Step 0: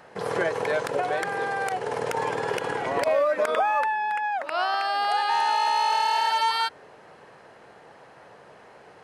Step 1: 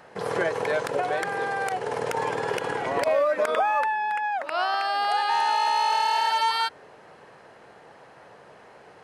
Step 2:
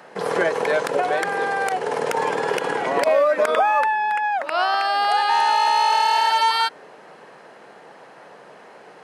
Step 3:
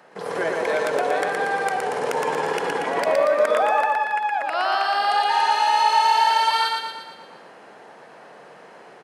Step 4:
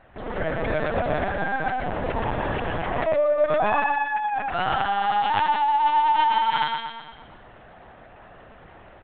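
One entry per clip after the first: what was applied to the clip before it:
no audible change
high-pass 160 Hz 24 dB/octave; trim +5 dB
level rider gain up to 4 dB; on a send: feedback delay 117 ms, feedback 53%, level -3 dB; on the sum: trim -6.5 dB
LPC vocoder at 8 kHz pitch kept; trim -2 dB

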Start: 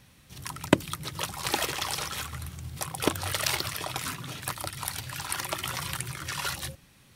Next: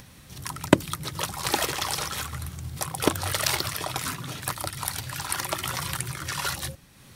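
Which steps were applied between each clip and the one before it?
peaking EQ 2.7 kHz -3 dB 0.82 oct; upward compressor, threshold -46 dBFS; trim +3.5 dB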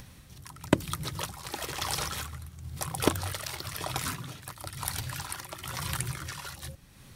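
tremolo 1 Hz, depth 70%; bass shelf 82 Hz +9 dB; trim -2.5 dB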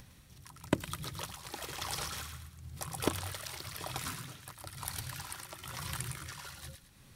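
feedback echo behind a high-pass 109 ms, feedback 36%, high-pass 1.4 kHz, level -6 dB; trim -6.5 dB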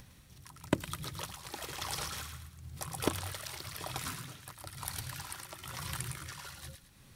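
companded quantiser 8-bit

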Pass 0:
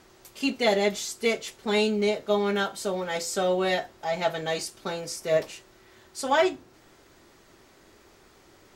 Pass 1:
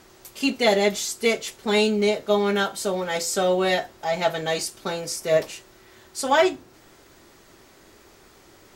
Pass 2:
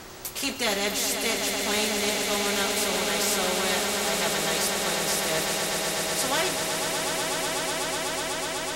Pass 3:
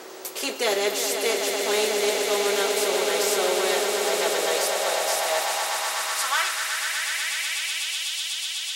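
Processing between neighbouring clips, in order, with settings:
treble shelf 8.3 kHz +5 dB; trim +3.5 dB
echo with a slow build-up 124 ms, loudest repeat 8, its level -12 dB; spectrum-flattening compressor 2:1; trim -5.5 dB
high-pass sweep 410 Hz -> 3.1 kHz, 4.21–8.16 s

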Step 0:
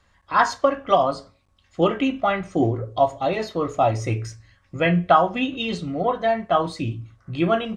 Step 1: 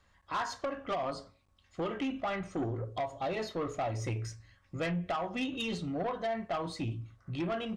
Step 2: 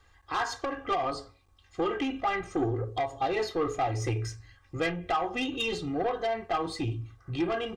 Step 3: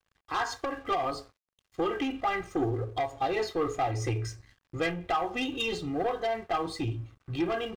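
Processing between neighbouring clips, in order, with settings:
compression 6:1, threshold -20 dBFS, peak gain reduction 10 dB; saturation -22 dBFS, distortion -12 dB; trim -6 dB
comb 2.5 ms, depth 73%; trim +3.5 dB
crossover distortion -56 dBFS

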